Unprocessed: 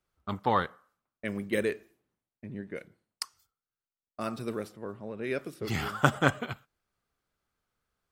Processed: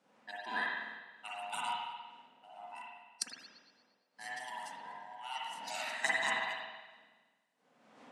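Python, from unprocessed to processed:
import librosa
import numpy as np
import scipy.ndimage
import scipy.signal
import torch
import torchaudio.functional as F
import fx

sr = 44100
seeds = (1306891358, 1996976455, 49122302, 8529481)

p1 = fx.band_swap(x, sr, width_hz=500)
p2 = fx.dmg_wind(p1, sr, seeds[0], corner_hz=360.0, level_db=-47.0)
p3 = np.diff(p2, prepend=0.0)
p4 = fx.schmitt(p3, sr, flips_db=-31.0)
p5 = p3 + F.gain(torch.from_numpy(p4), -6.0).numpy()
p6 = fx.cabinet(p5, sr, low_hz=150.0, low_slope=24, high_hz=9400.0, hz=(210.0, 360.0, 910.0), db=(6, -8, 3))
p7 = p6 + fx.echo_single(p6, sr, ms=78, db=-23.5, dry=0)
p8 = fx.rev_spring(p7, sr, rt60_s=1.3, pass_ms=(46, 50), chirp_ms=70, drr_db=-5.5)
y = F.gain(torch.from_numpy(p8), 1.0).numpy()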